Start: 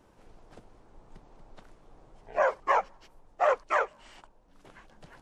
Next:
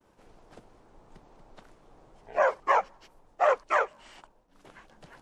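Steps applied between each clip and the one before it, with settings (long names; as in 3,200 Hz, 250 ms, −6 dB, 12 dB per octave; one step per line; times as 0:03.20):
downward expander −57 dBFS
low-shelf EQ 110 Hz −6 dB
level +1.5 dB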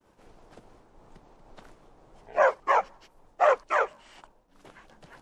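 amplitude modulation by smooth noise, depth 55%
level +4.5 dB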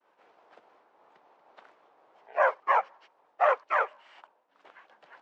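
band-pass filter 630–2,900 Hz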